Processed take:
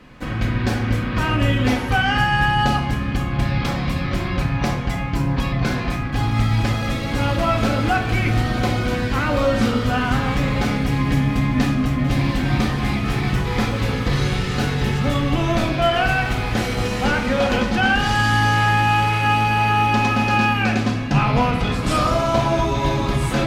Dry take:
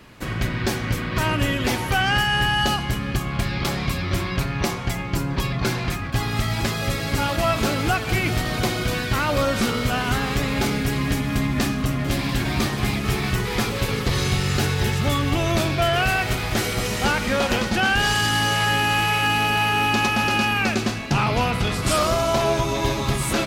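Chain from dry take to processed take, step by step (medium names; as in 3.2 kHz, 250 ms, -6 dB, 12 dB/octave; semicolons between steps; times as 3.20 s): low-pass 3.1 kHz 6 dB/octave; simulated room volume 970 m³, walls furnished, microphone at 2 m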